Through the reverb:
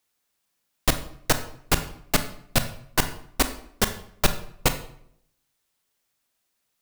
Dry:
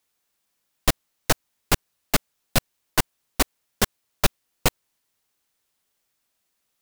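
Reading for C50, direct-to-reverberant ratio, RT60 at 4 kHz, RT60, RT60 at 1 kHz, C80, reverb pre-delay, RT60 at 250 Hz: 11.5 dB, 8.5 dB, 0.50 s, 0.70 s, 0.60 s, 14.5 dB, 25 ms, 0.80 s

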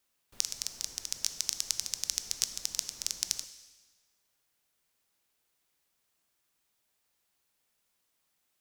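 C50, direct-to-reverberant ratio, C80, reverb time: 11.5 dB, 10.0 dB, 13.5 dB, 1.4 s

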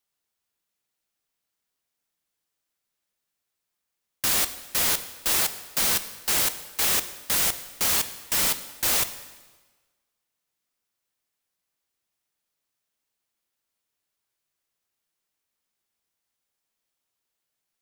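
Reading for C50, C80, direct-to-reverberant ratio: 13.0 dB, 14.5 dB, 11.0 dB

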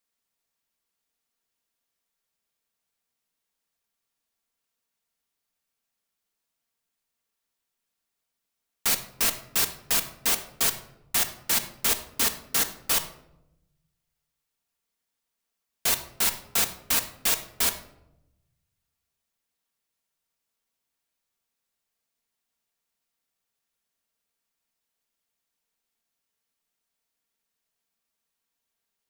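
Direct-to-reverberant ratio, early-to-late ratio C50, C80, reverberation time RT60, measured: 5.5 dB, 11.5 dB, 14.5 dB, 0.85 s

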